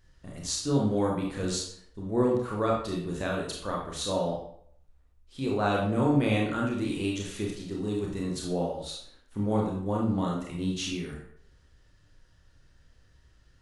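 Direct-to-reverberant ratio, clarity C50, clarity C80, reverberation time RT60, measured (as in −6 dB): −2.5 dB, 2.5 dB, 7.0 dB, 0.65 s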